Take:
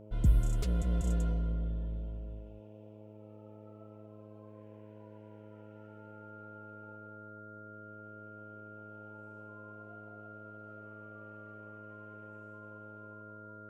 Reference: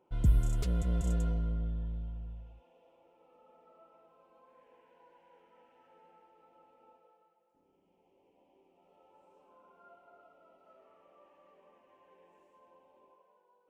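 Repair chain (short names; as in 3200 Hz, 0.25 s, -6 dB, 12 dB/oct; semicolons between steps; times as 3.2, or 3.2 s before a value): de-hum 106.1 Hz, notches 6; notch 1400 Hz, Q 30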